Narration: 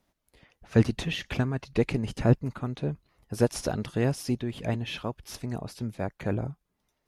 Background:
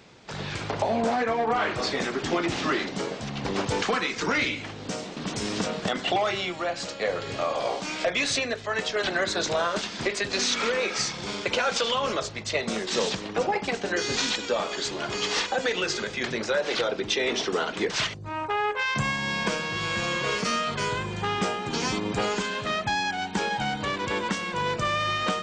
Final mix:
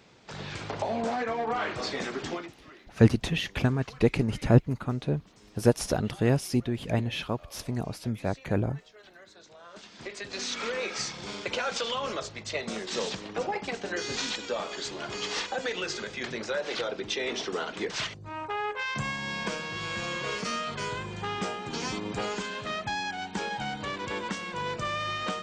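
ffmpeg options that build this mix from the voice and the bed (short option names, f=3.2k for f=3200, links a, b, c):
-filter_complex "[0:a]adelay=2250,volume=2dB[a];[1:a]volume=16dB,afade=t=out:st=2.23:d=0.3:silence=0.0841395,afade=t=in:st=9.6:d=1.24:silence=0.0891251[b];[a][b]amix=inputs=2:normalize=0"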